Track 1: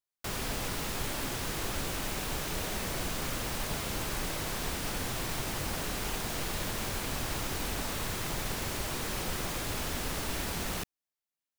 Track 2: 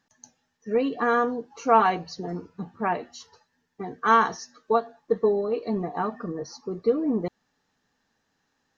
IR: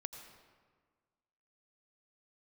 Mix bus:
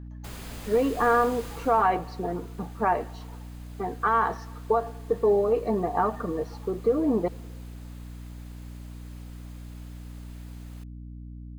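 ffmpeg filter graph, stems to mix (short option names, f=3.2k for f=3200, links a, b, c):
-filter_complex "[0:a]bandreject=f=5.6k:w=13,volume=-7.5dB,afade=t=out:st=1.46:d=0.42:silence=0.237137[a];[1:a]equalizer=f=780:w=0.32:g=12.5,alimiter=limit=-7dB:level=0:latency=1:release=69,lowpass=3.4k,volume=-8dB,asplit=2[b][c];[c]volume=-13.5dB[d];[2:a]atrim=start_sample=2205[e];[d][e]afir=irnorm=-1:irlink=0[f];[a][b][f]amix=inputs=3:normalize=0,aeval=exprs='val(0)+0.0112*(sin(2*PI*60*n/s)+sin(2*PI*2*60*n/s)/2+sin(2*PI*3*60*n/s)/3+sin(2*PI*4*60*n/s)/4+sin(2*PI*5*60*n/s)/5)':c=same"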